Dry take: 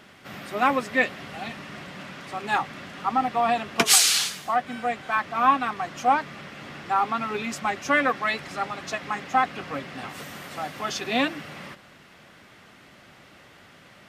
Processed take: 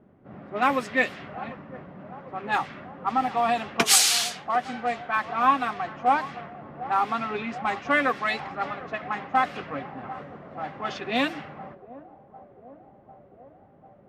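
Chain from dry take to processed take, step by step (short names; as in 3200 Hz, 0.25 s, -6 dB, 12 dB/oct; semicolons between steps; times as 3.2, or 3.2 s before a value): narrowing echo 0.748 s, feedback 80%, band-pass 630 Hz, level -15 dB; low-pass opened by the level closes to 460 Hz, open at -20 dBFS; gain -1 dB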